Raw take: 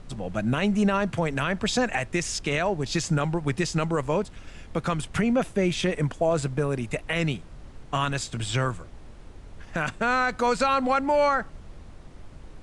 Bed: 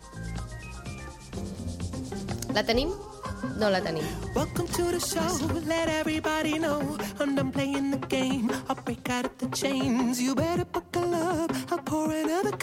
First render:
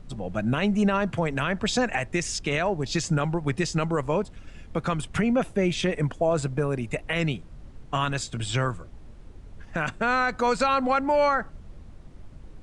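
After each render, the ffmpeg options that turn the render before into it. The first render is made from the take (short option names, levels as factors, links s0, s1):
-af "afftdn=nr=6:nf=-45"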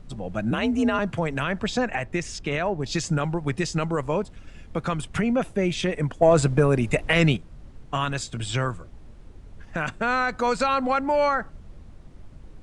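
-filter_complex "[0:a]asettb=1/sr,asplit=3[s0][s1][s2];[s0]atrim=end=0.514[s3];[s1]atrim=start=0.51:end=0.99,asetpts=PTS-STARTPTS,afade=t=in:d=0.004:c=qsin,afade=t=out:st=0.476:d=0.004:c=qsin,afreqshift=44[s4];[s2]atrim=start=0.986[s5];[s3][s4]acrossfade=d=0.004:c1=hsin:c2=qsin[s6];[s6][s5]acrossfade=d=0.004:c1=qsin:c2=hsin,asettb=1/sr,asplit=3[s7][s8][s9];[s7]atrim=end=1.664[s10];[s8]atrim=start=1.66:end=2.84,asetpts=PTS-STARTPTS,afade=t=in:d=0.004:c=qsin,afade=t=out:st=1.176:d=0.004:c=qsin,highshelf=f=4700:g=-9[s11];[s9]atrim=start=2.836[s12];[s10][s11]acrossfade=d=0.004:c1=hsin:c2=qsin[s13];[s13][s12]acrossfade=d=0.004:c1=qsin:c2=hsin,asettb=1/sr,asplit=3[s14][s15][s16];[s14]atrim=end=6.224[s17];[s15]atrim=start=6.22:end=7.37,asetpts=PTS-STARTPTS,afade=t=in:d=0.004:c=qsin,afade=t=out:st=1.146:d=0.004:c=qsin,acontrast=83[s18];[s16]atrim=start=7.366[s19];[s17][s18]acrossfade=d=0.004:c1=hsin:c2=qsin[s20];[s20][s19]acrossfade=d=0.004:c1=qsin:c2=hsin"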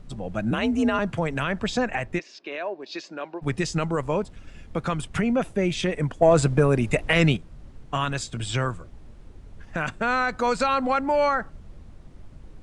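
-filter_complex "[0:a]asplit=3[s0][s1][s2];[s0]afade=t=out:st=2.18:d=0.02[s3];[s1]highpass=f=360:w=0.5412,highpass=f=360:w=1.3066,equalizer=f=460:t=q:w=4:g=-8,equalizer=f=820:t=q:w=4:g=-8,equalizer=f=1300:t=q:w=4:g=-9,equalizer=f=2000:t=q:w=4:g=-7,equalizer=f=3200:t=q:w=4:g=-8,lowpass=f=4200:w=0.5412,lowpass=f=4200:w=1.3066,afade=t=in:st=2.18:d=0.02,afade=t=out:st=3.41:d=0.02[s4];[s2]afade=t=in:st=3.41:d=0.02[s5];[s3][s4][s5]amix=inputs=3:normalize=0"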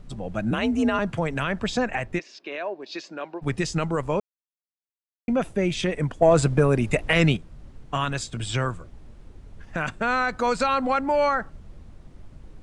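-filter_complex "[0:a]asplit=3[s0][s1][s2];[s0]atrim=end=4.2,asetpts=PTS-STARTPTS,afade=t=out:st=4.196:d=0.004:c=hsin[s3];[s1]atrim=start=4.2:end=5.28,asetpts=PTS-STARTPTS,volume=0[s4];[s2]atrim=start=5.28,asetpts=PTS-STARTPTS,afade=t=in:d=0.004:c=hsin[s5];[s3][s4][s5]concat=n=3:v=0:a=1"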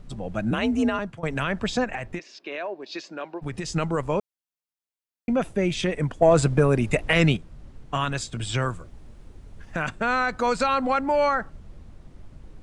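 -filter_complex "[0:a]asettb=1/sr,asplit=3[s0][s1][s2];[s0]atrim=end=1.844[s3];[s1]atrim=start=1.84:end=3.73,asetpts=PTS-STARTPTS,afade=t=in:d=0.004:c=qsin,afade=t=out:st=1.886:d=0.004:c=qsin,acompressor=threshold=0.0501:ratio=6:attack=3.2:release=140:knee=1:detection=peak[s4];[s2]atrim=start=3.726[s5];[s3][s4]acrossfade=d=0.004:c1=hsin:c2=qsin[s6];[s6][s5]acrossfade=d=0.004:c1=qsin:c2=hsin,asettb=1/sr,asplit=3[s7][s8][s9];[s7]atrim=end=8.624[s10];[s8]atrim=start=8.62:end=9.77,asetpts=PTS-STARTPTS,afade=t=in:d=0.004:c=qsin,afade=t=out:st=1.146:d=0.004:c=qsin,highshelf=f=7000:g=5.5[s11];[s9]atrim=start=9.766[s12];[s10][s11]acrossfade=d=0.004:c1=hsin:c2=qsin[s13];[s13][s12]acrossfade=d=0.004:c1=qsin:c2=hsin,asplit=2[s14][s15];[s14]atrim=end=1.23,asetpts=PTS-STARTPTS,afade=t=out:st=0.83:d=0.4:silence=0.112202[s16];[s15]atrim=start=1.23,asetpts=PTS-STARTPTS,afade=t=in:d=0.004:c=hsin:silence=0.112202[s17];[s16][s17]concat=n=2:v=0:a=1"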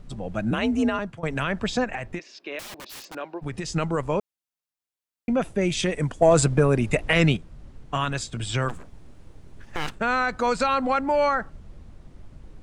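-filter_complex "[0:a]asettb=1/sr,asplit=3[s0][s1][s2];[s0]atrim=end=2.594[s3];[s1]atrim=start=2.59:end=3.15,asetpts=PTS-STARTPTS,afade=t=in:d=0.004:c=qsin,afade=t=out:st=0.556:d=0.004:c=qsin,aeval=exprs='(mod(56.2*val(0)+1,2)-1)/56.2':c=same[s4];[s2]atrim=start=3.146[s5];[s3][s4]acrossfade=d=0.004:c1=hsin:c2=qsin[s6];[s6][s5]acrossfade=d=0.004:c1=qsin:c2=hsin,asettb=1/sr,asplit=3[s7][s8][s9];[s7]atrim=end=5.614[s10];[s8]atrim=start=5.61:end=6.46,asetpts=PTS-STARTPTS,afade=t=in:d=0.004:c=qsin,afade=t=out:st=0.846:d=0.004:c=qsin,equalizer=f=8300:w=0.71:g=7[s11];[s9]atrim=start=6.456[s12];[s10][s11]acrossfade=d=0.004:c1=hsin:c2=qsin[s13];[s13][s12]acrossfade=d=0.004:c1=qsin:c2=hsin,asplit=3[s14][s15][s16];[s14]afade=t=out:st=8.68:d=0.02[s17];[s15]aeval=exprs='abs(val(0))':c=same,afade=t=in:st=8.68:d=0.02,afade=t=out:st=9.98:d=0.02[s18];[s16]afade=t=in:st=9.98:d=0.02[s19];[s17][s18][s19]amix=inputs=3:normalize=0"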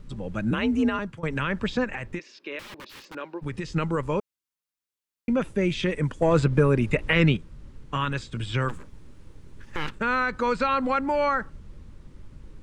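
-filter_complex "[0:a]equalizer=f=700:t=o:w=0.25:g=-14.5,acrossover=split=3900[s0][s1];[s1]acompressor=threshold=0.00251:ratio=4:attack=1:release=60[s2];[s0][s2]amix=inputs=2:normalize=0"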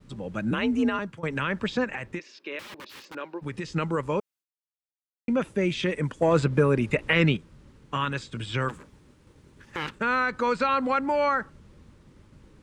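-af "highpass=f=140:p=1,agate=range=0.0224:threshold=0.00251:ratio=3:detection=peak"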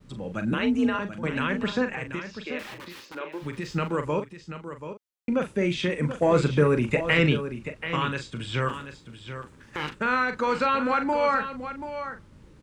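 -filter_complex "[0:a]asplit=2[s0][s1];[s1]adelay=40,volume=0.376[s2];[s0][s2]amix=inputs=2:normalize=0,asplit=2[s3][s4];[s4]aecho=0:1:733:0.299[s5];[s3][s5]amix=inputs=2:normalize=0"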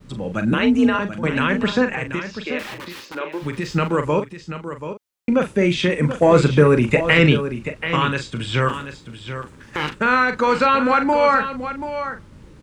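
-af "volume=2.37,alimiter=limit=0.794:level=0:latency=1"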